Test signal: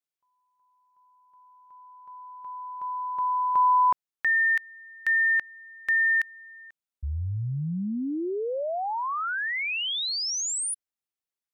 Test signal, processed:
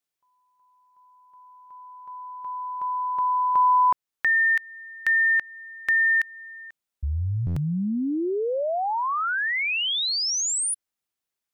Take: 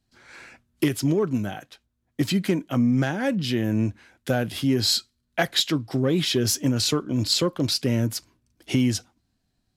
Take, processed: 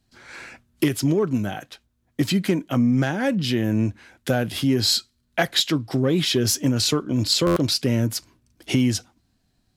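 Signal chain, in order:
in parallel at −1 dB: downward compressor, threshold −32 dBFS
on the sum: buffer that repeats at 0:07.46, samples 512, times 8

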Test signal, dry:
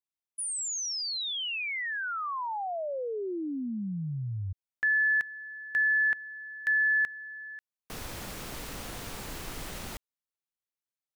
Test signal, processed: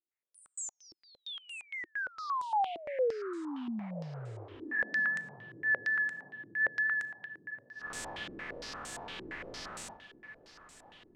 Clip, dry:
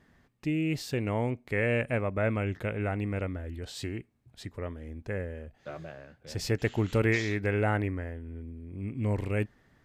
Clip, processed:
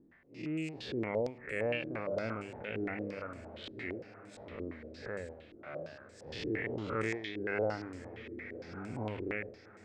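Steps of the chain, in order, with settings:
spectrum smeared in time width 178 ms
pitch vibrato 4.1 Hz 18 cents
reverb reduction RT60 1.5 s
low-shelf EQ 160 Hz −10 dB
in parallel at +0.5 dB: downward compressor, threshold −41 dBFS
on the sum: mains-hum notches 50/100 Hz
on a send: feedback delay with all-pass diffusion 1,251 ms, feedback 43%, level −13.5 dB
on the sum: low-pass on a step sequencer 8.7 Hz 340–7,900 Hz
level −5 dB

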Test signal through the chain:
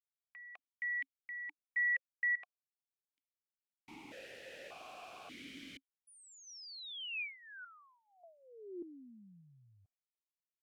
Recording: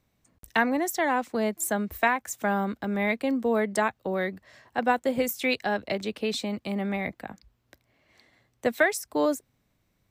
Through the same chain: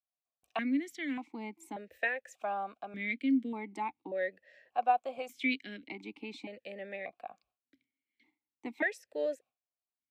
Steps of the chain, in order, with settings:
noise gate with hold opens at −47 dBFS
high-shelf EQ 2,200 Hz +8 dB
formant filter that steps through the vowels 1.7 Hz

